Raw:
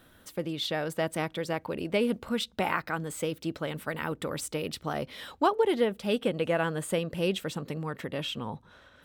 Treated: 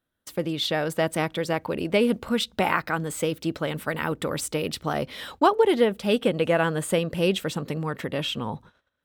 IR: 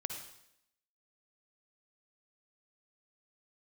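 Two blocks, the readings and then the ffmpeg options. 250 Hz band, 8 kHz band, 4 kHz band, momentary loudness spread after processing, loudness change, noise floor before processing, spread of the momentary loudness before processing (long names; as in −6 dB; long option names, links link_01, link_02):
+5.5 dB, +5.5 dB, +5.5 dB, 8 LU, +5.5 dB, −59 dBFS, 8 LU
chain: -af "agate=range=-29dB:threshold=-51dB:ratio=16:detection=peak,volume=5.5dB"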